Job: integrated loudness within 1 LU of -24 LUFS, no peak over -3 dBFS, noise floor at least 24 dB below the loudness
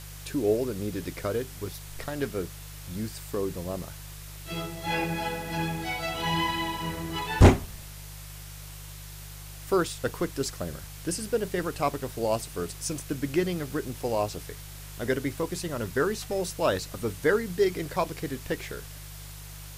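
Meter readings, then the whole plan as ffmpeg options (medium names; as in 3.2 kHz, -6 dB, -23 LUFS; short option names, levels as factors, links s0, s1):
hum 50 Hz; highest harmonic 150 Hz; hum level -41 dBFS; noise floor -43 dBFS; noise floor target -54 dBFS; loudness -29.5 LUFS; peak level -6.0 dBFS; loudness target -24.0 LUFS
-> -af "bandreject=f=50:t=h:w=4,bandreject=f=100:t=h:w=4,bandreject=f=150:t=h:w=4"
-af "afftdn=nr=11:nf=-43"
-af "volume=1.88,alimiter=limit=0.708:level=0:latency=1"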